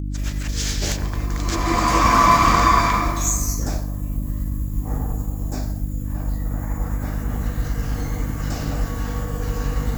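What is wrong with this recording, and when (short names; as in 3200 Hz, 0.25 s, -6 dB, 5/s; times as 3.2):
hum 50 Hz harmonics 6 -26 dBFS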